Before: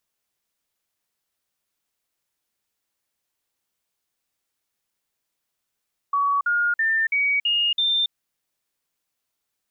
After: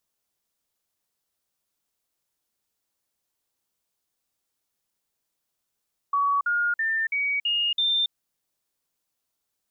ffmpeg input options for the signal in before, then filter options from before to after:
-f lavfi -i "aevalsrc='0.126*clip(min(mod(t,0.33),0.28-mod(t,0.33))/0.005,0,1)*sin(2*PI*1130*pow(2,floor(t/0.33)/3)*mod(t,0.33))':duration=1.98:sample_rate=44100"
-af "equalizer=frequency=2100:width=1:gain=-4.5"

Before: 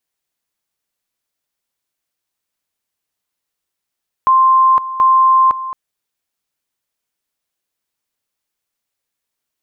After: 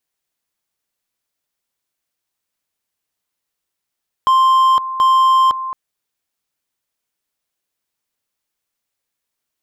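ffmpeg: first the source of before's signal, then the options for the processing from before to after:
-f lavfi -i "aevalsrc='pow(10,(-7-14*gte(mod(t,0.73),0.51))/20)*sin(2*PI*1050*t)':duration=1.46:sample_rate=44100"
-af "volume=10dB,asoftclip=hard,volume=-10dB"

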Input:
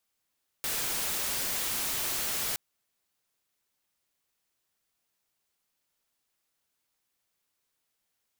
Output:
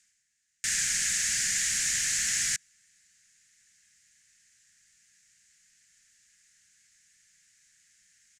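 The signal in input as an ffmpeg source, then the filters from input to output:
-f lavfi -i "anoisesrc=color=white:amplitude=0.0461:duration=1.92:sample_rate=44100:seed=1"
-af "firequalizer=gain_entry='entry(190,0);entry(340,-18);entry(670,-20);entry(960,-24);entry(1700,11);entry(2500,3);entry(3500,-1);entry(6900,13);entry(16000,-29)':delay=0.05:min_phase=1,areverse,acompressor=mode=upward:threshold=-52dB:ratio=2.5,areverse"

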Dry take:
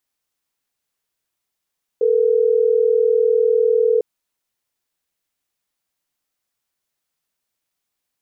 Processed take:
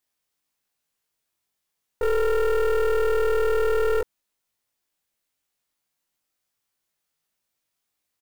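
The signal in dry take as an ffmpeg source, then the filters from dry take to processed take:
-f lavfi -i "aevalsrc='0.168*(sin(2*PI*440*t)+sin(2*PI*480*t))*clip(min(mod(t,6),2-mod(t,6))/0.005,0,1)':duration=3.12:sample_rate=44100"
-filter_complex "[0:a]aeval=exprs='(tanh(11.2*val(0)+0.55)-tanh(0.55))/11.2':channel_layout=same,asplit=2[link_01][link_02];[link_02]adelay=20,volume=-2dB[link_03];[link_01][link_03]amix=inputs=2:normalize=0,acrusher=bits=6:mode=log:mix=0:aa=0.000001"

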